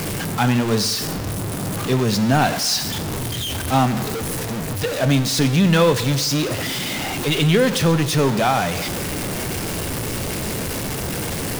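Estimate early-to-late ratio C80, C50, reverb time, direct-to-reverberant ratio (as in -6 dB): 14.5 dB, 13.0 dB, 1.2 s, 11.0 dB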